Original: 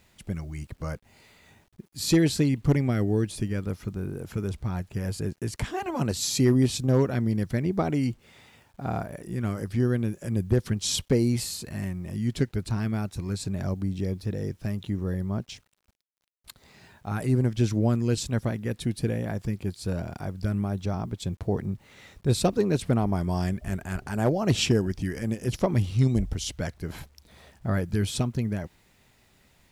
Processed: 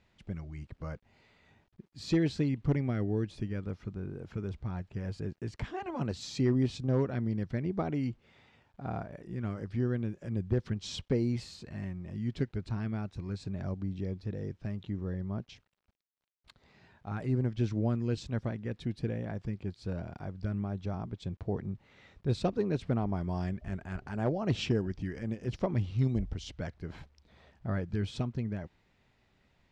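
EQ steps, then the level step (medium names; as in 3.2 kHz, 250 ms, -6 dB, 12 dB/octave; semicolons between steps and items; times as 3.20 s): distance through air 150 m; -6.5 dB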